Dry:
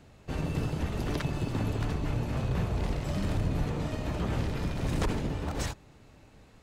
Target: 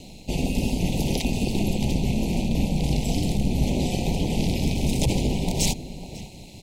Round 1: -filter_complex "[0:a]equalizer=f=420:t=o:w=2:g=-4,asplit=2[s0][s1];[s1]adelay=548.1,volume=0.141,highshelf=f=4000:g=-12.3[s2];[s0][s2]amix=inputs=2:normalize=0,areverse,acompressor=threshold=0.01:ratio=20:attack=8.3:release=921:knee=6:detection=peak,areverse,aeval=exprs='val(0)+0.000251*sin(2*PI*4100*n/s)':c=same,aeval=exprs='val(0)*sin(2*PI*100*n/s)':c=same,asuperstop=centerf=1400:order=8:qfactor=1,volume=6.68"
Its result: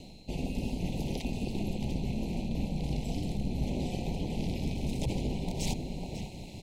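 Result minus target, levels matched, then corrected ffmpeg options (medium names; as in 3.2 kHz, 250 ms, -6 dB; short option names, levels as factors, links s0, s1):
compression: peak gain reduction +9.5 dB; 8 kHz band -4.5 dB
-filter_complex "[0:a]equalizer=f=420:t=o:w=2:g=-4,asplit=2[s0][s1];[s1]adelay=548.1,volume=0.141,highshelf=f=4000:g=-12.3[s2];[s0][s2]amix=inputs=2:normalize=0,areverse,acompressor=threshold=0.0316:ratio=20:attack=8.3:release=921:knee=6:detection=peak,areverse,aeval=exprs='val(0)+0.000251*sin(2*PI*4100*n/s)':c=same,aeval=exprs='val(0)*sin(2*PI*100*n/s)':c=same,asuperstop=centerf=1400:order=8:qfactor=1,highshelf=f=3800:g=7.5,volume=6.68"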